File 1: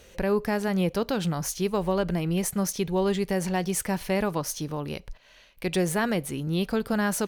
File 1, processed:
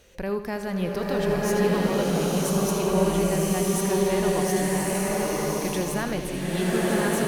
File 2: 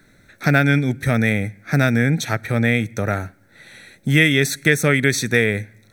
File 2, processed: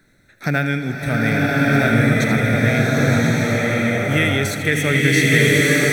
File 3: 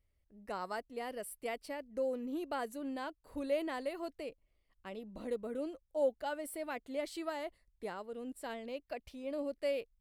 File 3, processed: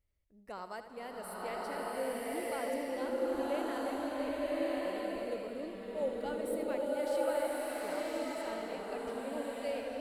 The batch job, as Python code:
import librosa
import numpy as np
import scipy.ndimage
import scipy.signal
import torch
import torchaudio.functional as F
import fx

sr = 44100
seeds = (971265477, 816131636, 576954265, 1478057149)

y = fx.echo_feedback(x, sr, ms=80, feedback_pct=44, wet_db=-11)
y = fx.rev_bloom(y, sr, seeds[0], attack_ms=1190, drr_db=-6.0)
y = F.gain(torch.from_numpy(y), -4.0).numpy()